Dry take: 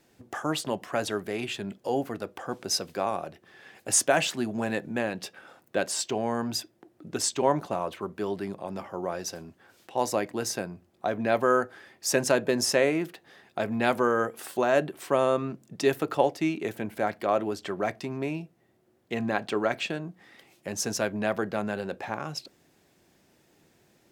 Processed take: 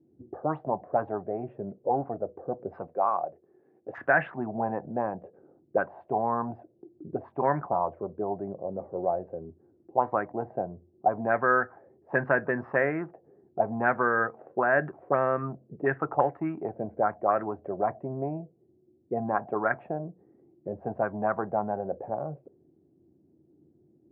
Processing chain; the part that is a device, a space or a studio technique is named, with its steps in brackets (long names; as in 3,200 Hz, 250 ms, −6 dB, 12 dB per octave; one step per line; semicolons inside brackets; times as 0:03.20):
envelope filter bass rig (envelope-controlled low-pass 320–1,700 Hz up, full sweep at −20.5 dBFS; loudspeaker in its box 66–2,200 Hz, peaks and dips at 84 Hz +10 dB, 140 Hz +7 dB, 740 Hz +4 dB)
0:02.87–0:03.98: RIAA equalisation recording
level −5 dB